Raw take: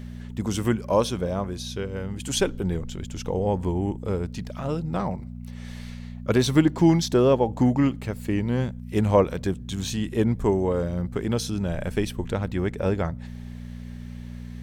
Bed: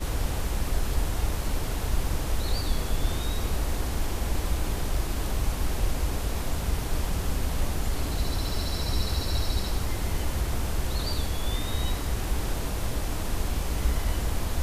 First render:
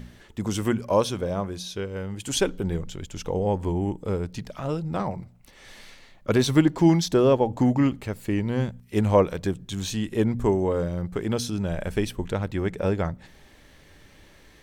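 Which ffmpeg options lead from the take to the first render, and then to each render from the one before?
-af "bandreject=f=60:t=h:w=4,bandreject=f=120:t=h:w=4,bandreject=f=180:t=h:w=4,bandreject=f=240:t=h:w=4"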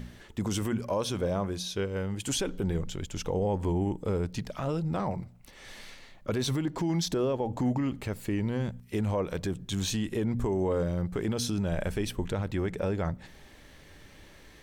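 -af "acompressor=threshold=0.0891:ratio=6,alimiter=limit=0.0944:level=0:latency=1:release=18"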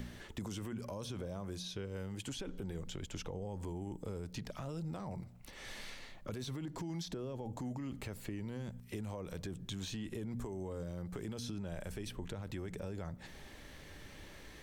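-filter_complex "[0:a]alimiter=level_in=1.12:limit=0.0631:level=0:latency=1:release=30,volume=0.891,acrossover=split=220|4900[s0][s1][s2];[s0]acompressor=threshold=0.00631:ratio=4[s3];[s1]acompressor=threshold=0.00562:ratio=4[s4];[s2]acompressor=threshold=0.00178:ratio=4[s5];[s3][s4][s5]amix=inputs=3:normalize=0"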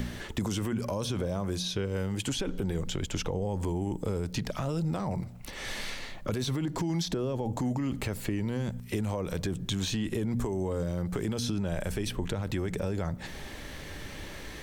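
-af "volume=3.55"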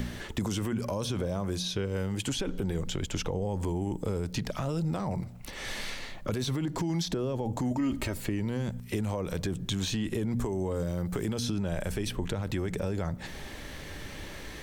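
-filter_complex "[0:a]asettb=1/sr,asplit=3[s0][s1][s2];[s0]atrim=end=7.714[s3];[s1]atrim=start=7.71:end=8.18,asetpts=PTS-STARTPTS,afade=t=in:d=0.004:c=qsin,afade=t=out:st=0.466:d=0.004:c=qsin,aecho=1:1:3.2:0.65,atrim=end_sample=20727[s4];[s2]atrim=start=8.176[s5];[s3][s4]acrossfade=d=0.004:c1=hsin:c2=qsin[s6];[s6][s5]acrossfade=d=0.004:c1=qsin:c2=hsin,asettb=1/sr,asplit=3[s7][s8][s9];[s7]atrim=end=10.754[s10];[s8]atrim=start=10.75:end=11.3,asetpts=PTS-STARTPTS,afade=t=in:d=0.004:c=qsin,afade=t=out:st=0.546:d=0.004:c=qsin,highshelf=f=12000:g=9[s11];[s9]atrim=start=11.296[s12];[s10][s11]acrossfade=d=0.004:c1=hsin:c2=qsin[s13];[s13][s12]acrossfade=d=0.004:c1=qsin:c2=hsin"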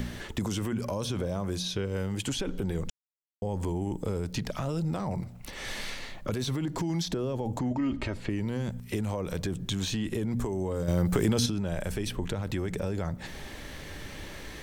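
-filter_complex "[0:a]asettb=1/sr,asplit=3[s0][s1][s2];[s0]atrim=end=7.594[s3];[s1]atrim=start=7.59:end=8.29,asetpts=PTS-STARTPTS,afade=t=in:d=0.004:c=qsin,afade=t=out:st=0.696:d=0.004:c=qsin,lowpass=4200[s4];[s2]atrim=start=8.286[s5];[s3][s4]acrossfade=d=0.004:c1=hsin:c2=qsin[s6];[s6][s5]acrossfade=d=0.004:c1=qsin:c2=hsin,asplit=5[s7][s8][s9][s10][s11];[s7]atrim=end=2.9,asetpts=PTS-STARTPTS,afade=t=out:st=2.896:d=0.004:c=hsin[s12];[s8]atrim=start=2.9:end=3.42,asetpts=PTS-STARTPTS,volume=0[s13];[s9]atrim=start=3.42:end=10.882,asetpts=PTS-STARTPTS,afade=t=in:d=0.004:c=hsin[s14];[s10]atrim=start=10.878:end=11.462,asetpts=PTS-STARTPTS,volume=2.11[s15];[s11]atrim=start=11.458[s16];[s12][s13][s14]concat=n=3:v=0:a=1[s17];[s17][s15]acrossfade=d=0.004:c1=hsin:c2=hsin[s18];[s18][s16]acrossfade=d=0.004:c1=hsin:c2=hsin"

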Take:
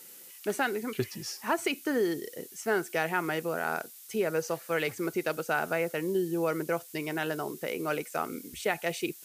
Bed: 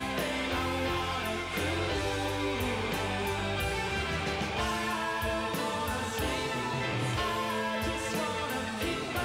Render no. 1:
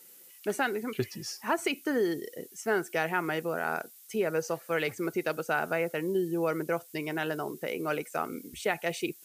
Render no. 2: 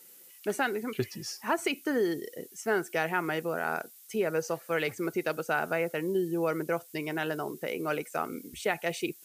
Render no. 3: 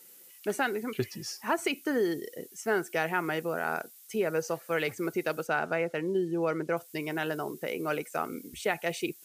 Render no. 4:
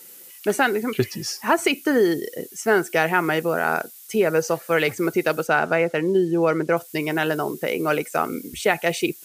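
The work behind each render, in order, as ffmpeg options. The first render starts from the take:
-af "afftdn=nr=6:nf=-50"
-af anull
-filter_complex "[0:a]asettb=1/sr,asplit=3[s0][s1][s2];[s0]atrim=end=5.474[s3];[s1]atrim=start=5.47:end=6.77,asetpts=PTS-STARTPTS,afade=t=in:d=0.004:c=qsin,afade=t=out:st=1.296:d=0.004:c=qsin,adynamicsmooth=sensitivity=2.5:basefreq=7300[s4];[s2]atrim=start=6.766[s5];[s3][s4]acrossfade=d=0.004:c1=hsin:c2=qsin[s6];[s6][s5]acrossfade=d=0.004:c1=qsin:c2=hsin"
-af "volume=2.99"

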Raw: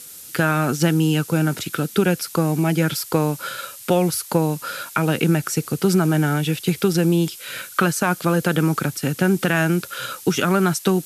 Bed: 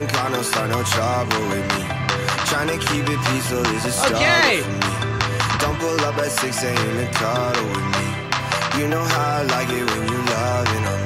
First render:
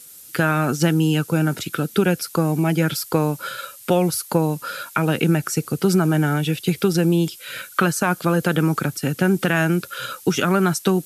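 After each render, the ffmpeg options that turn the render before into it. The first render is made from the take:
-af "afftdn=nr=6:nf=-40"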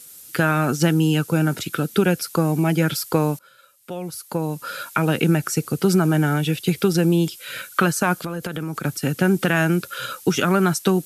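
-filter_complex "[0:a]asplit=3[s0][s1][s2];[s0]afade=t=out:st=8.17:d=0.02[s3];[s1]acompressor=threshold=0.0631:ratio=6:attack=3.2:release=140:knee=1:detection=peak,afade=t=in:st=8.17:d=0.02,afade=t=out:st=8.84:d=0.02[s4];[s2]afade=t=in:st=8.84:d=0.02[s5];[s3][s4][s5]amix=inputs=3:normalize=0,asplit=2[s6][s7];[s6]atrim=end=3.39,asetpts=PTS-STARTPTS,afade=t=out:st=3.386:d=0.004:c=hsin:silence=0.0749894[s8];[s7]atrim=start=3.39,asetpts=PTS-STARTPTS,afade=t=in:d=1.43:c=qua:silence=0.0749894[s9];[s8][s9]concat=n=2:v=0:a=1"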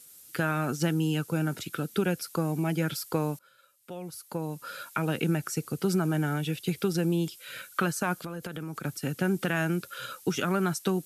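-af "volume=0.355"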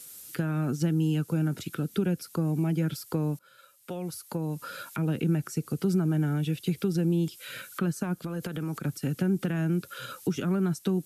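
-filter_complex "[0:a]acrossover=split=370[s0][s1];[s1]acompressor=threshold=0.00562:ratio=3[s2];[s0][s2]amix=inputs=2:normalize=0,asplit=2[s3][s4];[s4]alimiter=level_in=2:limit=0.0631:level=0:latency=1:release=351,volume=0.501,volume=1[s5];[s3][s5]amix=inputs=2:normalize=0"

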